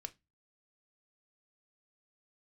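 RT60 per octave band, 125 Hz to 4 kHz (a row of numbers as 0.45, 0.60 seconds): 0.40, 0.35, 0.20, 0.20, 0.20, 0.20 seconds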